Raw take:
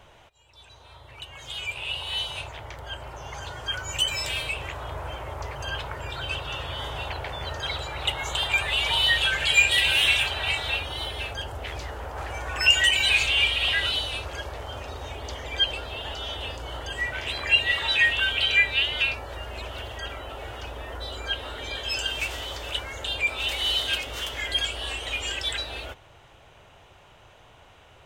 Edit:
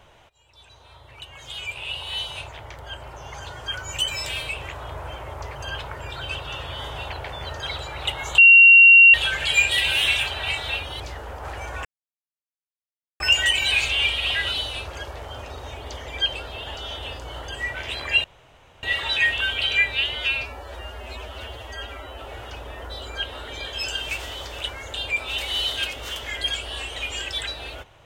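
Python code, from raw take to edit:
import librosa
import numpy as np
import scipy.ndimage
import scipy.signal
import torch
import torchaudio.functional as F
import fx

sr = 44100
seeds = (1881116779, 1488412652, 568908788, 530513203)

y = fx.edit(x, sr, fx.bleep(start_s=8.38, length_s=0.76, hz=2750.0, db=-6.5),
    fx.cut(start_s=11.0, length_s=0.73),
    fx.insert_silence(at_s=12.58, length_s=1.35),
    fx.insert_room_tone(at_s=17.62, length_s=0.59),
    fx.stretch_span(start_s=18.94, length_s=1.37, factor=1.5), tone=tone)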